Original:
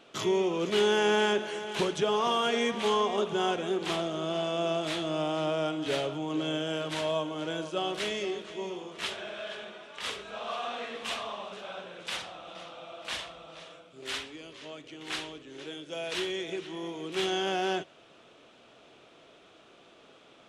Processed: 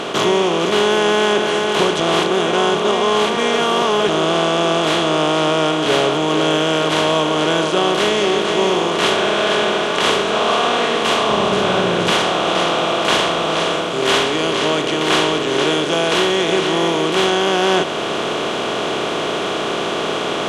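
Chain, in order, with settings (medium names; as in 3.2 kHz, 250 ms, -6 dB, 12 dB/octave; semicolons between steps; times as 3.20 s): spectral levelling over time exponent 0.4; 11.29–12.12 s: peaking EQ 94 Hz +13 dB 2.1 oct; gain riding within 3 dB 0.5 s; 2.00–4.09 s: reverse; trim +9 dB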